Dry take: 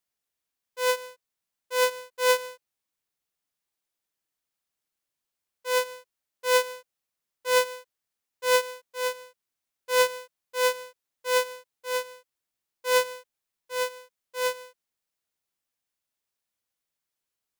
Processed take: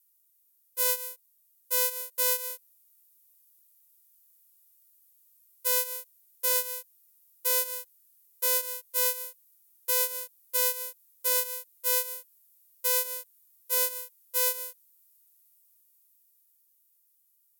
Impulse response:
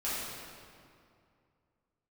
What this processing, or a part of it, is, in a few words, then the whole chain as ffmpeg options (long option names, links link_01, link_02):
FM broadcast chain: -filter_complex "[0:a]highpass=71,dynaudnorm=framelen=300:gausssize=13:maxgain=5dB,acrossover=split=3300|7200[link_01][link_02][link_03];[link_01]acompressor=threshold=-23dB:ratio=4[link_04];[link_02]acompressor=threshold=-34dB:ratio=4[link_05];[link_03]acompressor=threshold=-37dB:ratio=4[link_06];[link_04][link_05][link_06]amix=inputs=3:normalize=0,aemphasis=mode=production:type=50fm,alimiter=limit=-11.5dB:level=0:latency=1:release=371,asoftclip=type=hard:threshold=-14dB,lowpass=frequency=15000:width=0.5412,lowpass=frequency=15000:width=1.3066,aemphasis=mode=production:type=50fm,volume=-6.5dB"